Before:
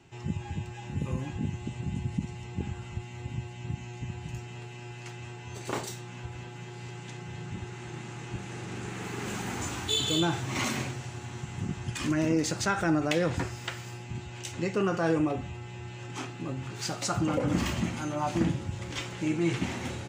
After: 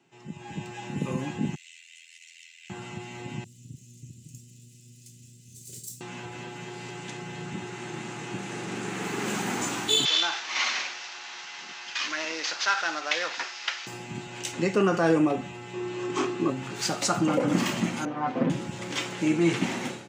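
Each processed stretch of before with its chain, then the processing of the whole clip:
0:01.55–0:02.70: Butterworth high-pass 2,000 Hz 48 dB per octave + high-shelf EQ 11,000 Hz +3.5 dB + amplitude modulation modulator 83 Hz, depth 70%
0:03.44–0:06.01: lower of the sound and its delayed copy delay 2 ms + Chebyshev band-stop filter 110–8,100 Hz
0:10.05–0:13.87: variable-slope delta modulation 32 kbit/s + high-pass filter 860 Hz + tilt shelving filter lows −4 dB, about 1,300 Hz
0:15.73–0:16.50: low-pass filter 8,600 Hz 24 dB per octave + hollow resonant body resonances 370/1,100 Hz, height 12 dB, ringing for 35 ms
0:18.05–0:18.50: lower of the sound and its delayed copy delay 7.7 ms + head-to-tape spacing loss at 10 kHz 36 dB + comb filter 4 ms, depth 44%
whole clip: automatic gain control gain up to 13 dB; high-pass filter 160 Hz 24 dB per octave; level −7 dB

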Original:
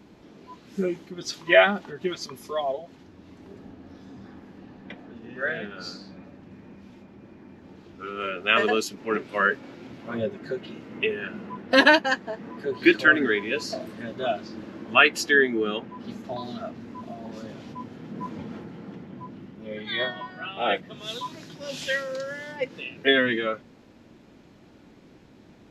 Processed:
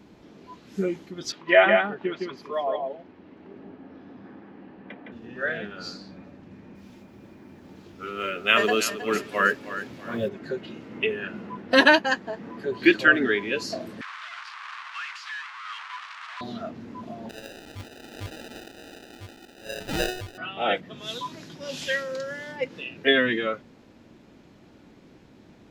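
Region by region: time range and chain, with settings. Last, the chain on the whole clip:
0:01.32–0:05.12: three-way crossover with the lows and the highs turned down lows −12 dB, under 170 Hz, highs −24 dB, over 3,400 Hz + notch filter 3,600 Hz, Q 23 + single-tap delay 162 ms −4 dB
0:06.75–0:10.29: high-shelf EQ 6,100 Hz +10 dB + log-companded quantiser 8 bits + repeating echo 317 ms, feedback 34%, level −12 dB
0:14.01–0:16.41: sign of each sample alone + elliptic high-pass filter 1,100 Hz, stop band 60 dB + head-to-tape spacing loss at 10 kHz 34 dB
0:17.29–0:20.38: high-pass filter 320 Hz 24 dB per octave + sample-rate reduction 1,100 Hz + parametric band 3,300 Hz +8 dB 1.8 octaves
whole clip: no processing

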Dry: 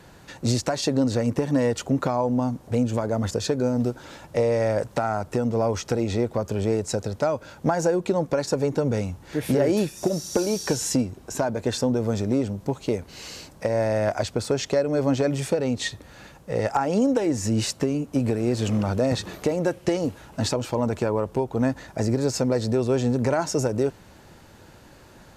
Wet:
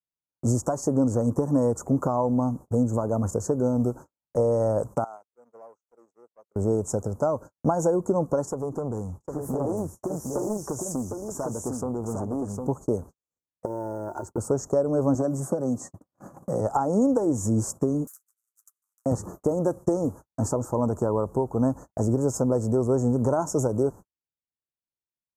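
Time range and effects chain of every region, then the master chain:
0:05.04–0:06.56: high-pass filter 540 Hz + downward compressor 10 to 1, threshold −33 dBFS + saturating transformer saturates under 1,600 Hz
0:08.45–0:12.67: downward compressor 1.5 to 1, threshold −35 dBFS + single-tap delay 756 ms −4.5 dB + highs frequency-modulated by the lows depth 0.52 ms
0:13.65–0:14.38: downward compressor 5 to 1, threshold −32 dBFS + hollow resonant body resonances 360/900/1,400 Hz, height 16 dB, ringing for 55 ms + noise that follows the level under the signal 33 dB
0:15.15–0:16.61: high-pass filter 130 Hz + notch comb filter 450 Hz + multiband upward and downward compressor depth 70%
0:18.07–0:19.06: Butterworth high-pass 2,100 Hz 48 dB per octave + every bin compressed towards the loudest bin 10 to 1
whole clip: elliptic band-stop filter 1,200–6,800 Hz, stop band 70 dB; noise gate −37 dBFS, range −57 dB

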